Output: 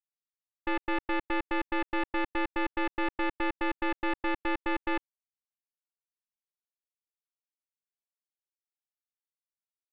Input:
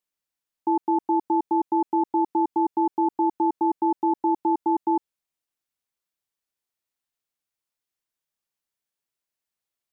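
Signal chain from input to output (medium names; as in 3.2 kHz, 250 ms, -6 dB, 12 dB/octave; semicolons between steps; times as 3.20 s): tracing distortion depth 0.45 ms; bit crusher 11-bit; trim -8 dB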